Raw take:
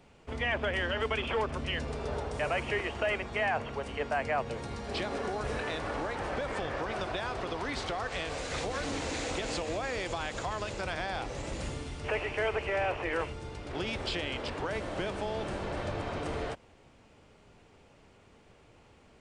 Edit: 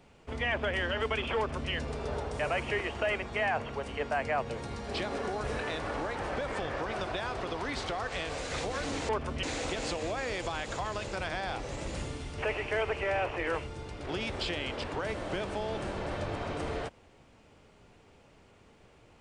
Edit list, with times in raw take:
0:01.37–0:01.71: duplicate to 0:09.09

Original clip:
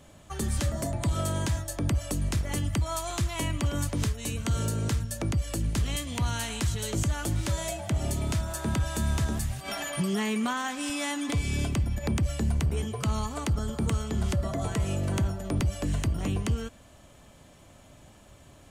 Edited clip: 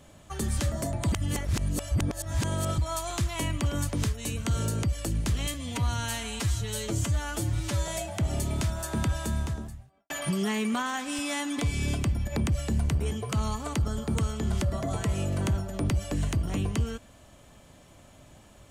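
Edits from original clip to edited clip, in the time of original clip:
0:01.12–0:02.78: reverse
0:04.83–0:05.32: remove
0:06.03–0:07.59: time-stretch 1.5×
0:08.77–0:09.81: fade out and dull

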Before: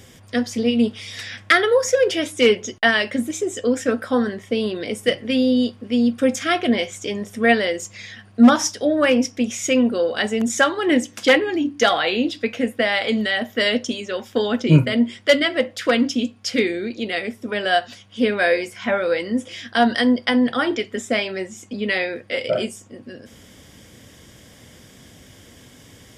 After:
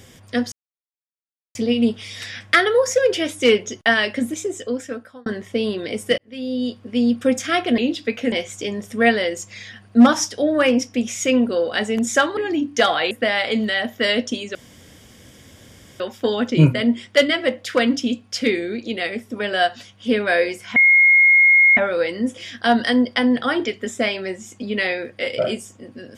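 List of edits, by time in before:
0:00.52: splice in silence 1.03 s
0:03.27–0:04.23: fade out
0:05.15–0:05.94: fade in
0:10.80–0:11.40: remove
0:12.14–0:12.68: move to 0:06.75
0:14.12: splice in room tone 1.45 s
0:18.88: insert tone 2,150 Hz −9 dBFS 1.01 s

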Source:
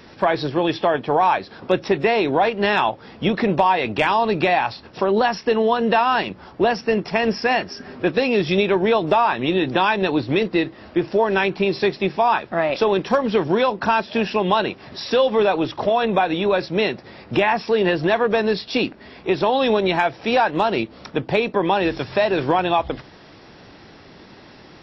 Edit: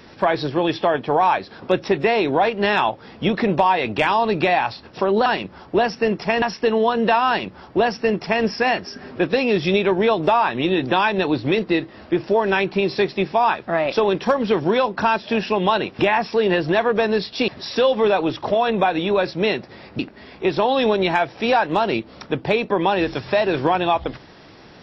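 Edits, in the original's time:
0:06.12–0:07.28: duplicate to 0:05.26
0:17.34–0:18.83: move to 0:14.83

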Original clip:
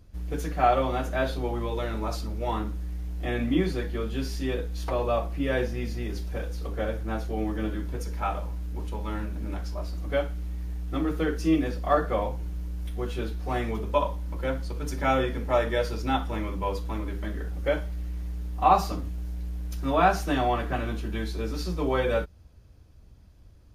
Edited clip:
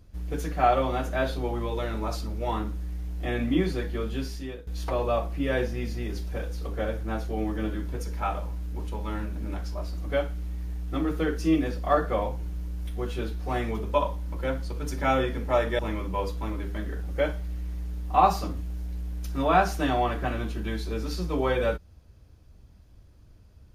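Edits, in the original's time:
0:04.13–0:04.67: fade out, to −18.5 dB
0:15.79–0:16.27: remove

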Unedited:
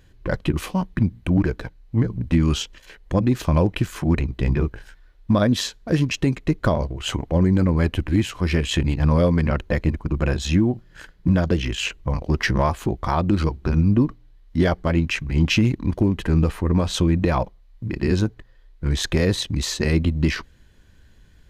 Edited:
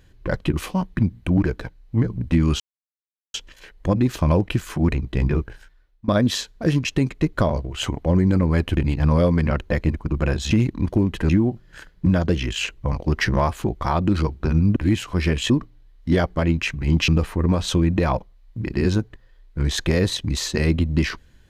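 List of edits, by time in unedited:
0:02.60: splice in silence 0.74 s
0:04.70–0:05.34: fade out, to −22.5 dB
0:08.03–0:08.77: move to 0:13.98
0:15.56–0:16.34: move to 0:10.51

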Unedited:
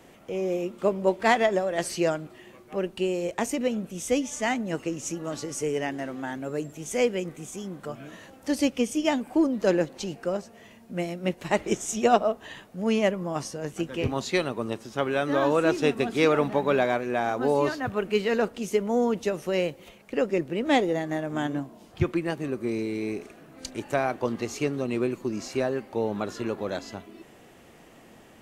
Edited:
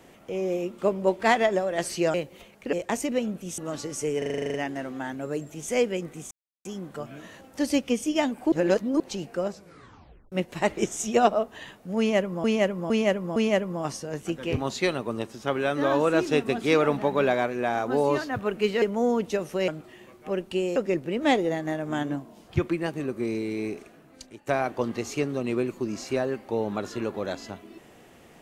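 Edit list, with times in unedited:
0:02.14–0:03.22: swap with 0:19.61–0:20.20
0:04.07–0:05.17: remove
0:05.77: stutter 0.04 s, 10 plays
0:07.54: splice in silence 0.34 s
0:09.41–0:09.89: reverse
0:10.39: tape stop 0.82 s
0:12.87–0:13.33: repeat, 4 plays
0:18.33–0:18.75: remove
0:23.13–0:23.91: fade out, to −18 dB

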